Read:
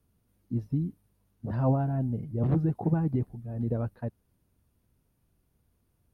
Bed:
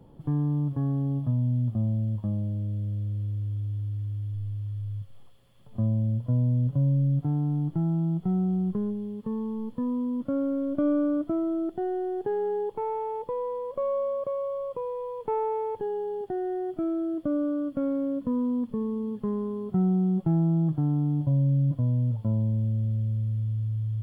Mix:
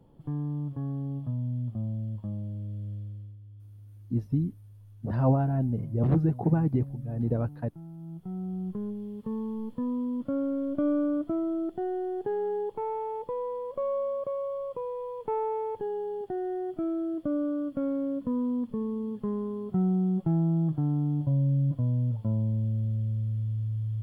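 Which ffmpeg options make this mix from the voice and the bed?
ffmpeg -i stem1.wav -i stem2.wav -filter_complex "[0:a]adelay=3600,volume=2dB[link_01];[1:a]volume=10dB,afade=type=out:start_time=2.92:duration=0.46:silence=0.251189,afade=type=in:start_time=7.96:duration=1.39:silence=0.158489[link_02];[link_01][link_02]amix=inputs=2:normalize=0" out.wav

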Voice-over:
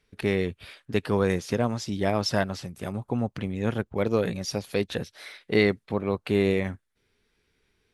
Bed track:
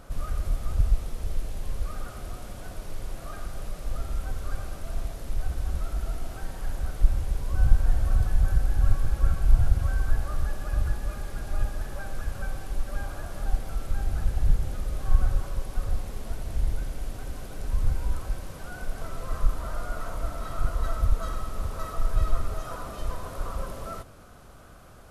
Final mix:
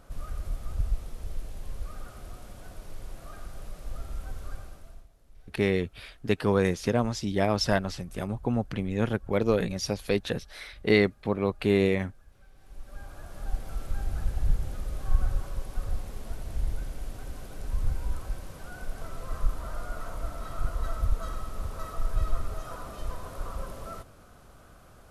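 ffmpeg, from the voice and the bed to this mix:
ffmpeg -i stem1.wav -i stem2.wav -filter_complex "[0:a]adelay=5350,volume=0dB[link_01];[1:a]volume=15.5dB,afade=type=out:start_time=4.45:duration=0.62:silence=0.112202,afade=type=in:start_time=12.53:duration=1.25:silence=0.0841395[link_02];[link_01][link_02]amix=inputs=2:normalize=0" out.wav

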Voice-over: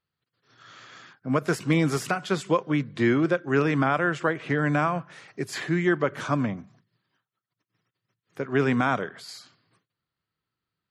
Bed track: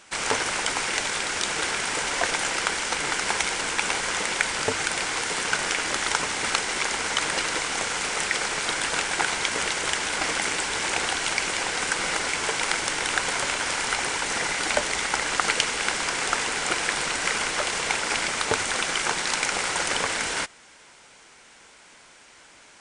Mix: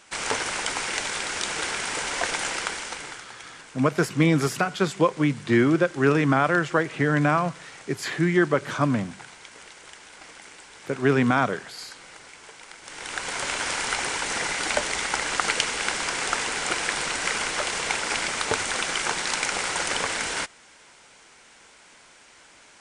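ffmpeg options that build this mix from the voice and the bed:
ffmpeg -i stem1.wav -i stem2.wav -filter_complex "[0:a]adelay=2500,volume=2.5dB[link_01];[1:a]volume=16.5dB,afade=type=out:start_time=2.49:duration=0.79:silence=0.133352,afade=type=in:start_time=12.81:duration=0.79:silence=0.11885[link_02];[link_01][link_02]amix=inputs=2:normalize=0" out.wav

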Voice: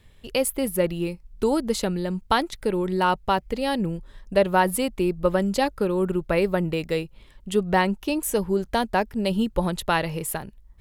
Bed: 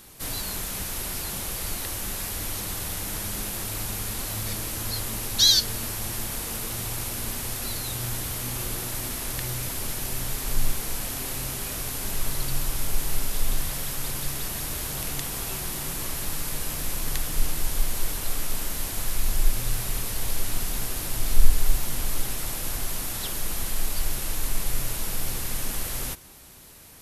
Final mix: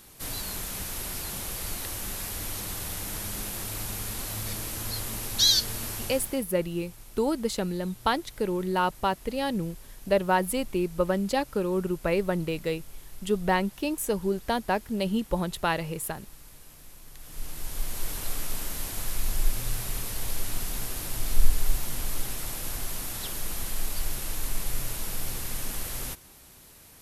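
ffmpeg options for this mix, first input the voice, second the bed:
ffmpeg -i stem1.wav -i stem2.wav -filter_complex "[0:a]adelay=5750,volume=-4dB[link_01];[1:a]volume=13.5dB,afade=type=out:start_time=5.96:duration=0.49:silence=0.141254,afade=type=in:start_time=17.16:duration=1.03:silence=0.149624[link_02];[link_01][link_02]amix=inputs=2:normalize=0" out.wav

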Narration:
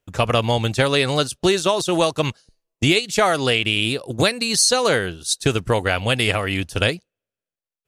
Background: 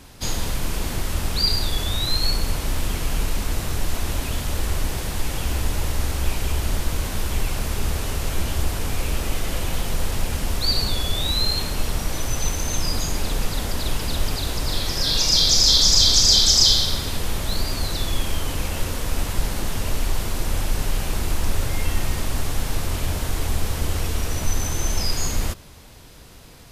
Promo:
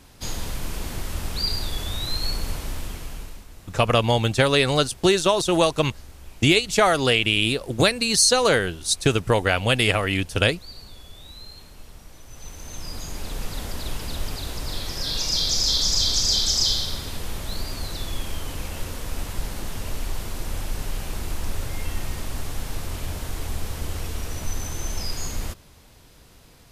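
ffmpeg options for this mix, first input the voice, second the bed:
ffmpeg -i stem1.wav -i stem2.wav -filter_complex "[0:a]adelay=3600,volume=-0.5dB[link_01];[1:a]volume=9.5dB,afade=type=out:start_time=2.52:duration=0.94:silence=0.16788,afade=type=in:start_time=12.26:duration=1.33:silence=0.188365[link_02];[link_01][link_02]amix=inputs=2:normalize=0" out.wav

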